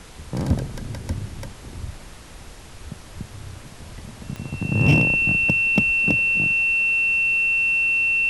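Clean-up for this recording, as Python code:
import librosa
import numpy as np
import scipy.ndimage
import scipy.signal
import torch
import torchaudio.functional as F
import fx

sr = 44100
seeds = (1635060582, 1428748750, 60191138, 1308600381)

y = fx.fix_declip(x, sr, threshold_db=-9.5)
y = fx.fix_declick_ar(y, sr, threshold=10.0)
y = fx.notch(y, sr, hz=2700.0, q=30.0)
y = fx.noise_reduce(y, sr, print_start_s=2.17, print_end_s=2.67, reduce_db=27.0)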